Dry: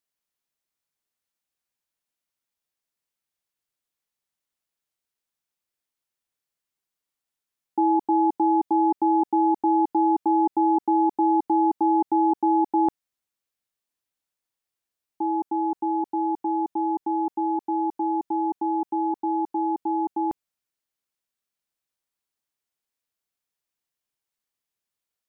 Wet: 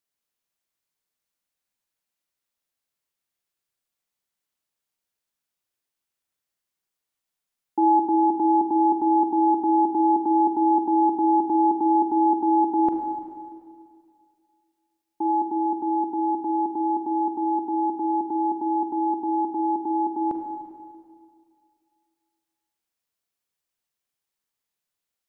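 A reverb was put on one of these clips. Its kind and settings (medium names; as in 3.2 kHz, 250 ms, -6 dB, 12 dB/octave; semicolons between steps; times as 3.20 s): Schroeder reverb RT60 2.2 s, combs from 33 ms, DRR 3.5 dB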